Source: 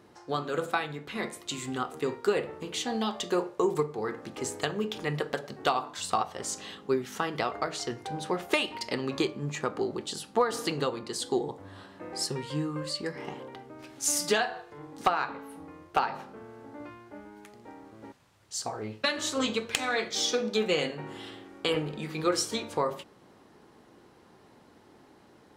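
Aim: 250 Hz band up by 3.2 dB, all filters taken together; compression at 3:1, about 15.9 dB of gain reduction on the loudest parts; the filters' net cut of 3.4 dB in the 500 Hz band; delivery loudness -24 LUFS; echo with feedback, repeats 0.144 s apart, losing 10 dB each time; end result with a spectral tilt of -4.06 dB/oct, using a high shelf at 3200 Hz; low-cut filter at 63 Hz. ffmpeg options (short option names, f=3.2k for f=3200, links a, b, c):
-af "highpass=63,equalizer=f=250:t=o:g=6.5,equalizer=f=500:t=o:g=-6.5,highshelf=f=3.2k:g=-5,acompressor=threshold=-45dB:ratio=3,aecho=1:1:144|288|432|576:0.316|0.101|0.0324|0.0104,volume=21dB"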